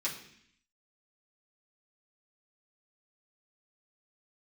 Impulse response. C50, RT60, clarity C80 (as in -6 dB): 8.0 dB, 0.65 s, 11.0 dB